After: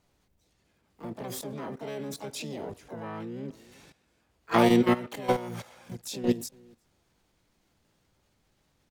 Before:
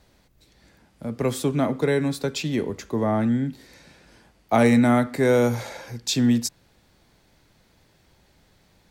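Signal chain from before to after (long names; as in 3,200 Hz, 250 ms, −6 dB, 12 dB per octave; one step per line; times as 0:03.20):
slap from a distant wall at 62 metres, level −28 dB
output level in coarse steps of 17 dB
pitch-shifted copies added +7 semitones −1 dB, +12 semitones −8 dB
level −5.5 dB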